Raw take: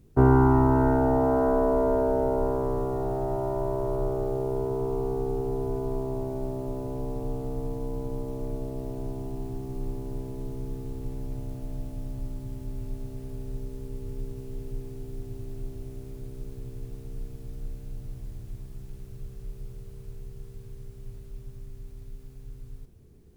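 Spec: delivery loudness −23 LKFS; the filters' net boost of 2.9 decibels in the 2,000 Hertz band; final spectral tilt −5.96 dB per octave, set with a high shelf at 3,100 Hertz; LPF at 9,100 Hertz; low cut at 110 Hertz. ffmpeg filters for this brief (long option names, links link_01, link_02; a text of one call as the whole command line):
ffmpeg -i in.wav -af "highpass=110,lowpass=9100,equalizer=frequency=2000:width_type=o:gain=3,highshelf=frequency=3100:gain=5.5,volume=5dB" out.wav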